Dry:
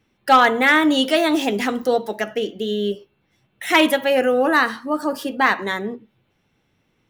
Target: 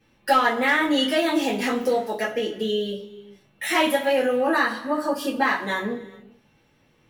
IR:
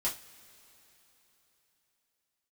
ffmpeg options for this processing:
-filter_complex "[0:a]acompressor=threshold=0.0282:ratio=2[s0];[1:a]atrim=start_sample=2205,afade=t=out:st=0.45:d=0.01,atrim=end_sample=20286,asetrate=39249,aresample=44100[s1];[s0][s1]afir=irnorm=-1:irlink=0"

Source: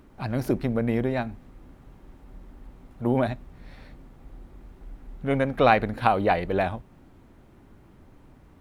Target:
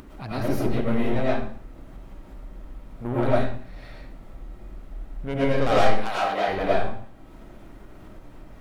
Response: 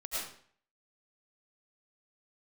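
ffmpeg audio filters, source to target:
-filter_complex "[0:a]aeval=exprs='(tanh(10*val(0)+0.5)-tanh(0.5))/10':c=same,asettb=1/sr,asplit=3[s0][s1][s2];[s0]atrim=end=5.804[s3];[s1]atrim=start=5.8:end=6.48,asetpts=PTS-STARTPTS,afade=t=in:d=0.004:c=qsin,afade=t=out:st=0.676:d=0.004:c=qsin,highpass=f=840:p=1[s4];[s2]atrim=start=6.476[s5];[s3][s4]acrossfade=d=0.004:c1=hsin:c2=qsin[s6];[s6][s5]acrossfade=d=0.004:c1=qsin:c2=hsin[s7];[1:a]atrim=start_sample=2205[s8];[s7][s8]afir=irnorm=-1:irlink=0,acompressor=mode=upward:threshold=0.0126:ratio=2.5,volume=1.41"

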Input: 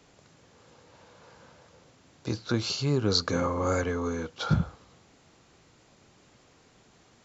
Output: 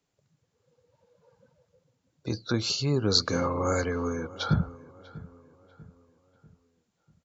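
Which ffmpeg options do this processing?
-filter_complex "[0:a]afftdn=nr=22:nf=-44,highshelf=f=5300:g=7,asplit=2[s0][s1];[s1]adelay=643,lowpass=f=2100:p=1,volume=0.119,asplit=2[s2][s3];[s3]adelay=643,lowpass=f=2100:p=1,volume=0.45,asplit=2[s4][s5];[s5]adelay=643,lowpass=f=2100:p=1,volume=0.45,asplit=2[s6][s7];[s7]adelay=643,lowpass=f=2100:p=1,volume=0.45[s8];[s2][s4][s6][s8]amix=inputs=4:normalize=0[s9];[s0][s9]amix=inputs=2:normalize=0"

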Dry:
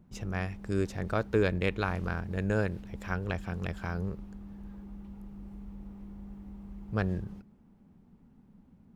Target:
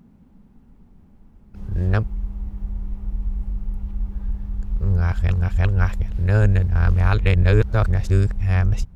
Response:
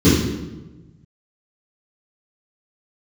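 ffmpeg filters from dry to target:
-af "areverse,asubboost=boost=11:cutoff=76,volume=2.24"

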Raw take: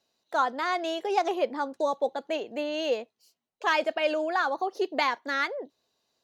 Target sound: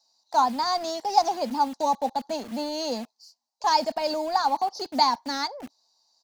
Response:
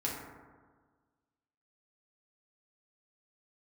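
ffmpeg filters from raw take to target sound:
-filter_complex "[0:a]firequalizer=gain_entry='entry(130,0);entry(220,11);entry(370,-13);entry(560,-7);entry(880,7);entry(1300,-11);entry(3000,-14);entry(4600,12);entry(9700,-5)':delay=0.05:min_phase=1,acrossover=split=410[s0][s1];[s0]acrusher=bits=7:mix=0:aa=0.000001[s2];[s2][s1]amix=inputs=2:normalize=0,volume=1.5"

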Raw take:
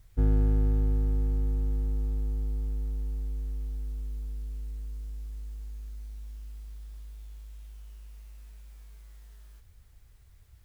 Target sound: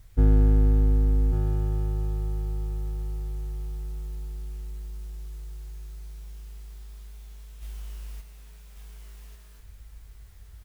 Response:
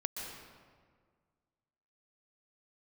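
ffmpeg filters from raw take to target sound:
-filter_complex "[0:a]asplit=3[s0][s1][s2];[s0]afade=t=out:st=7.61:d=0.02[s3];[s1]acontrast=57,afade=t=in:st=7.61:d=0.02,afade=t=out:st=8.2:d=0.02[s4];[s2]afade=t=in:st=8.2:d=0.02[s5];[s3][s4][s5]amix=inputs=3:normalize=0,aecho=1:1:1145:0.531,volume=1.78"

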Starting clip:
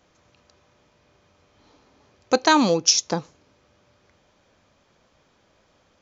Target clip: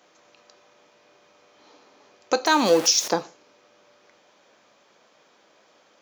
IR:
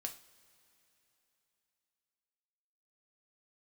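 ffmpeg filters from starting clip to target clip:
-filter_complex "[0:a]asettb=1/sr,asplit=3[s0][s1][s2];[s0]atrim=end=2.464[s3];[s1]atrim=start=2.46:end=3.08,asetpts=PTS-STARTPTS,afade=t=in:d=0.004:c=qsin,afade=t=out:st=0.616:d=0.004:c=qsin,aeval=exprs='val(0)+0.5*0.0422*sgn(val(0))':c=same[s4];[s2]atrim=start=3.076[s5];[s3][s4]acrossfade=d=0.004:c1=hsin:c2=qsin[s6];[s6][s5]acrossfade=d=0.004:c1=qsin:c2=hsin,highpass=330,alimiter=limit=0.237:level=0:latency=1:release=302,asplit=2[s7][s8];[1:a]atrim=start_sample=2205,afade=t=out:st=0.21:d=0.01,atrim=end_sample=9702[s9];[s8][s9]afir=irnorm=-1:irlink=0,volume=1.06[s10];[s7][s10]amix=inputs=2:normalize=0"

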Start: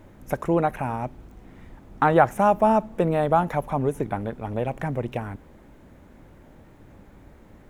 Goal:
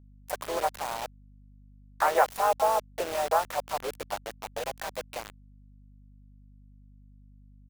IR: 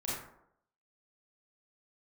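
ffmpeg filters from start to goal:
-filter_complex "[0:a]crystalizer=i=1:c=0,asplit=3[s0][s1][s2];[s1]asetrate=33038,aresample=44100,atempo=1.33484,volume=0.447[s3];[s2]asetrate=55563,aresample=44100,atempo=0.793701,volume=0.355[s4];[s0][s3][s4]amix=inputs=3:normalize=0,highpass=f=500:w=0.5412,highpass=f=500:w=1.3066,acrusher=bits=4:mix=0:aa=0.000001,aeval=exprs='val(0)+0.00447*(sin(2*PI*50*n/s)+sin(2*PI*2*50*n/s)/2+sin(2*PI*3*50*n/s)/3+sin(2*PI*4*50*n/s)/4+sin(2*PI*5*50*n/s)/5)':c=same,volume=0.531"

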